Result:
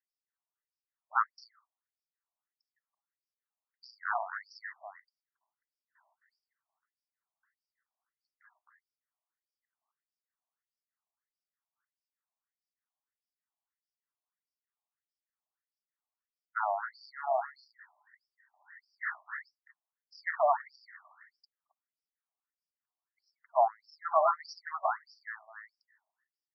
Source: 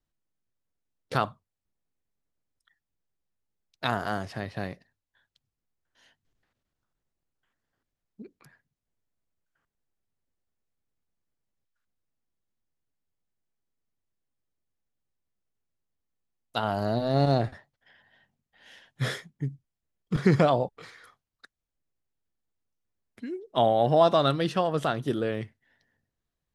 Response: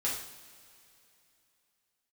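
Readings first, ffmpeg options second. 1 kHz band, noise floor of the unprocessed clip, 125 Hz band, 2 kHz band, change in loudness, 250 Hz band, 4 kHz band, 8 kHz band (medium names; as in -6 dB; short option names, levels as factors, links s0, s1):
-2.5 dB, under -85 dBFS, under -40 dB, -1.5 dB, -6.5 dB, under -40 dB, -19.0 dB, under -10 dB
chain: -af "asuperstop=centerf=3100:order=20:qfactor=1.2,equalizer=f=220:t=o:w=2.3:g=-12.5,aecho=1:1:264:0.531,afftfilt=real='re*between(b*sr/1024,820*pow(4200/820,0.5+0.5*sin(2*PI*1.6*pts/sr))/1.41,820*pow(4200/820,0.5+0.5*sin(2*PI*1.6*pts/sr))*1.41)':imag='im*between(b*sr/1024,820*pow(4200/820,0.5+0.5*sin(2*PI*1.6*pts/sr))/1.41,820*pow(4200/820,0.5+0.5*sin(2*PI*1.6*pts/sr))*1.41)':win_size=1024:overlap=0.75,volume=1.5"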